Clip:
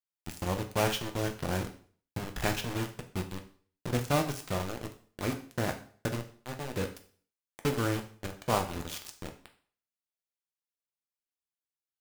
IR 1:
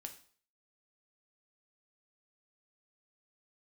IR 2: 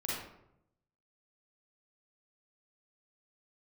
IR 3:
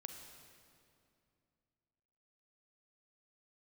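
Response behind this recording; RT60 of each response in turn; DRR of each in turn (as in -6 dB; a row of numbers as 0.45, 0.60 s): 1; 0.50, 0.80, 2.5 s; 4.5, -6.5, 4.5 dB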